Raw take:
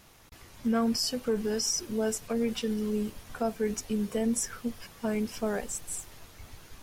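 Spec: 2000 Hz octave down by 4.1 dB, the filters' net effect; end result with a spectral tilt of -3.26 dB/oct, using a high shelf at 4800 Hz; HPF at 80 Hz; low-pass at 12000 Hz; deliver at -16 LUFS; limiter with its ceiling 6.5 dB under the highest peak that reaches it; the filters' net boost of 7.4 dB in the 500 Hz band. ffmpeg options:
-af "highpass=80,lowpass=12k,equalizer=f=500:t=o:g=9,equalizer=f=2k:t=o:g=-7,highshelf=f=4.8k:g=3.5,volume=13dB,alimiter=limit=-6dB:level=0:latency=1"

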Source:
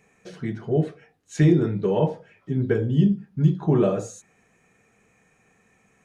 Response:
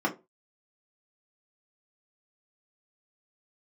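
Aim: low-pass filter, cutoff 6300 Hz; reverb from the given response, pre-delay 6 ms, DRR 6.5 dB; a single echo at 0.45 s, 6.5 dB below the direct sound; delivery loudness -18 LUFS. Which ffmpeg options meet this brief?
-filter_complex "[0:a]lowpass=6.3k,aecho=1:1:450:0.473,asplit=2[a][b];[1:a]atrim=start_sample=2205,adelay=6[c];[b][c]afir=irnorm=-1:irlink=0,volume=-17dB[d];[a][d]amix=inputs=2:normalize=0,volume=2dB"

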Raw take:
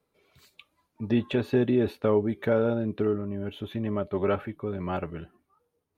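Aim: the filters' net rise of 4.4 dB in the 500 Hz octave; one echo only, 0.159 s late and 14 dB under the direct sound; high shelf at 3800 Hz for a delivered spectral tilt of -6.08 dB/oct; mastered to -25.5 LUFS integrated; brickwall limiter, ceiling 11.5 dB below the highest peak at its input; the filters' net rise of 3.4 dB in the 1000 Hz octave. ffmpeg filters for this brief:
-af "equalizer=f=500:t=o:g=5,equalizer=f=1k:t=o:g=3.5,highshelf=f=3.8k:g=-4.5,alimiter=limit=-19.5dB:level=0:latency=1,aecho=1:1:159:0.2,volume=5dB"

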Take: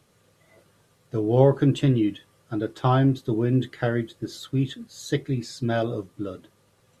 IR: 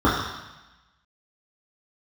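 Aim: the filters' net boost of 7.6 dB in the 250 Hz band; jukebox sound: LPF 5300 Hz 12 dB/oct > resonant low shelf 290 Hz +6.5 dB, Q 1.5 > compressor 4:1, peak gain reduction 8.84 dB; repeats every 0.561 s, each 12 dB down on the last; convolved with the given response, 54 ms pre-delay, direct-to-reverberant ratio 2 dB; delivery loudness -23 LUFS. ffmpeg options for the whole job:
-filter_complex "[0:a]equalizer=f=250:t=o:g=3.5,aecho=1:1:561|1122|1683:0.251|0.0628|0.0157,asplit=2[a][b];[1:a]atrim=start_sample=2205,adelay=54[c];[b][c]afir=irnorm=-1:irlink=0,volume=-23.5dB[d];[a][d]amix=inputs=2:normalize=0,lowpass=5.3k,lowshelf=f=290:t=q:w=1.5:g=6.5,acompressor=threshold=-11dB:ratio=4,volume=-6dB"

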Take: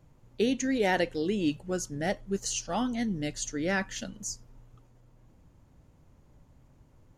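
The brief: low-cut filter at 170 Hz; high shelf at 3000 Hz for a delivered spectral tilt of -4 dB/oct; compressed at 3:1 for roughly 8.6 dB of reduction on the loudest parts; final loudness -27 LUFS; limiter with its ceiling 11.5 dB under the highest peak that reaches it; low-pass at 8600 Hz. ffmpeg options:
-af "highpass=170,lowpass=8.6k,highshelf=f=3k:g=-6,acompressor=threshold=-35dB:ratio=3,volume=16.5dB,alimiter=limit=-18dB:level=0:latency=1"

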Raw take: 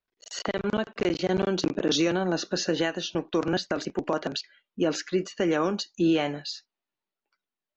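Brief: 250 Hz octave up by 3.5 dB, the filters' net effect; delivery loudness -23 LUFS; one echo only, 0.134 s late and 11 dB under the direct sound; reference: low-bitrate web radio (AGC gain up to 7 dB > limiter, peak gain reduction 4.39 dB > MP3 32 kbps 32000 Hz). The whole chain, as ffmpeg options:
-af "equalizer=f=250:t=o:g=5.5,aecho=1:1:134:0.282,dynaudnorm=m=7dB,alimiter=limit=-15.5dB:level=0:latency=1,volume=4dB" -ar 32000 -c:a libmp3lame -b:a 32k

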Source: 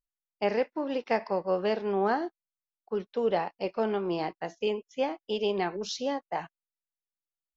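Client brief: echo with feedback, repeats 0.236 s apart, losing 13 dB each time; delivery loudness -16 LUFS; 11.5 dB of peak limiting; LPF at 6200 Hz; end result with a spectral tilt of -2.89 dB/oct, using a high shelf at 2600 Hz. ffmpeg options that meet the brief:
-af "lowpass=6.2k,highshelf=f=2.6k:g=9,alimiter=limit=-23.5dB:level=0:latency=1,aecho=1:1:236|472|708:0.224|0.0493|0.0108,volume=18dB"

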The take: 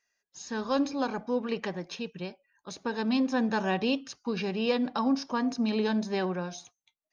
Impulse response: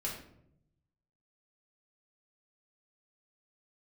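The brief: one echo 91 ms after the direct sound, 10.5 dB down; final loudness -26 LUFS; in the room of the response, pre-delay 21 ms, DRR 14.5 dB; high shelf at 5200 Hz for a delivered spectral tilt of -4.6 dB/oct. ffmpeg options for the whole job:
-filter_complex "[0:a]highshelf=f=5.2k:g=-8,aecho=1:1:91:0.299,asplit=2[a][b];[1:a]atrim=start_sample=2205,adelay=21[c];[b][c]afir=irnorm=-1:irlink=0,volume=-16.5dB[d];[a][d]amix=inputs=2:normalize=0,volume=4dB"

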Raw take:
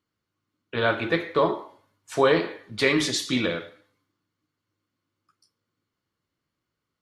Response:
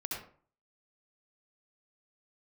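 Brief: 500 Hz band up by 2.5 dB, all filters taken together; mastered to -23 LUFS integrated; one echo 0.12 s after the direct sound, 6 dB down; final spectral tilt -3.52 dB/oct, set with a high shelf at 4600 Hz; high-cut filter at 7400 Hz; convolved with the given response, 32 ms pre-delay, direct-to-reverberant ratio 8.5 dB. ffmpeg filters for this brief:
-filter_complex "[0:a]lowpass=7.4k,equalizer=f=500:t=o:g=3,highshelf=f=4.6k:g=-4.5,aecho=1:1:120:0.501,asplit=2[a][b];[1:a]atrim=start_sample=2205,adelay=32[c];[b][c]afir=irnorm=-1:irlink=0,volume=-10.5dB[d];[a][d]amix=inputs=2:normalize=0,volume=-1.5dB"

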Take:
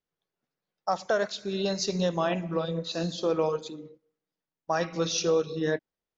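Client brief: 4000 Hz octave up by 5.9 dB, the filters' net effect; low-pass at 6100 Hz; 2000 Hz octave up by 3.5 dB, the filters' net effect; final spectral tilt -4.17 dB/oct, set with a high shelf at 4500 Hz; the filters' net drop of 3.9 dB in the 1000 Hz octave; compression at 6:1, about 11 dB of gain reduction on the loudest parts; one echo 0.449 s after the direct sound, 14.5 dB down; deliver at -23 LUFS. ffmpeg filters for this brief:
-af "lowpass=6.1k,equalizer=f=1k:t=o:g=-7.5,equalizer=f=2k:t=o:g=6.5,equalizer=f=4k:t=o:g=8.5,highshelf=f=4.5k:g=-4,acompressor=threshold=-34dB:ratio=6,aecho=1:1:449:0.188,volume=14.5dB"

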